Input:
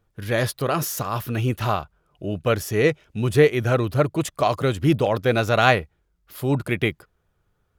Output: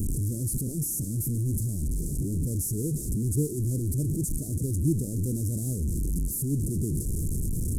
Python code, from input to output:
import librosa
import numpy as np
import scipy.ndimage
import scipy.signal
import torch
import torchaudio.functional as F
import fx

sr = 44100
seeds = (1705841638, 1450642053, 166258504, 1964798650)

y = fx.delta_mod(x, sr, bps=64000, step_db=-15.0)
y = scipy.signal.sosfilt(scipy.signal.cheby2(4, 70, [960.0, 2800.0], 'bandstop', fs=sr, output='sos'), y)
y = fx.end_taper(y, sr, db_per_s=570.0)
y = y * 10.0 ** (-4.5 / 20.0)